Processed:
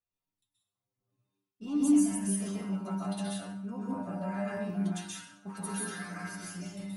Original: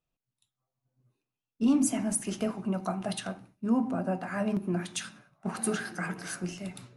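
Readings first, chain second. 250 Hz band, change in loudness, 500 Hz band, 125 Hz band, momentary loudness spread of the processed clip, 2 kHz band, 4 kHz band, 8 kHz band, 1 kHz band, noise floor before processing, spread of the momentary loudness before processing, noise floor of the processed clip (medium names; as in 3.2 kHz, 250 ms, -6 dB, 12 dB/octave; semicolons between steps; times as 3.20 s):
-1.0 dB, -2.0 dB, -6.0 dB, -1.5 dB, 15 LU, -5.0 dB, -4.5 dB, -3.0 dB, -4.0 dB, under -85 dBFS, 11 LU, under -85 dBFS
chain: inharmonic resonator 97 Hz, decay 0.35 s, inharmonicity 0.002; plate-style reverb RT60 0.63 s, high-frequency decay 0.85×, pre-delay 115 ms, DRR -5 dB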